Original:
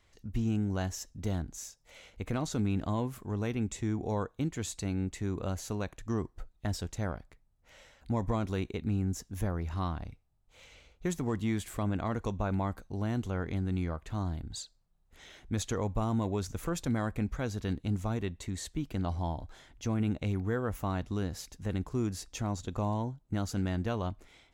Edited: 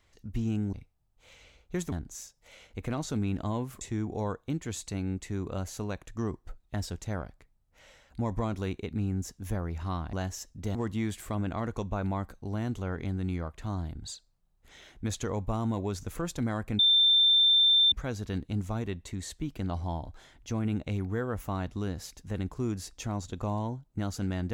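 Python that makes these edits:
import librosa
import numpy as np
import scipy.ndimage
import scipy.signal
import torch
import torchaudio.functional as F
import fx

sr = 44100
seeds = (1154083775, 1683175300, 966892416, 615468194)

y = fx.edit(x, sr, fx.swap(start_s=0.73, length_s=0.62, other_s=10.04, other_length_s=1.19),
    fx.cut(start_s=3.24, length_s=0.48),
    fx.insert_tone(at_s=17.27, length_s=1.13, hz=3570.0, db=-18.5), tone=tone)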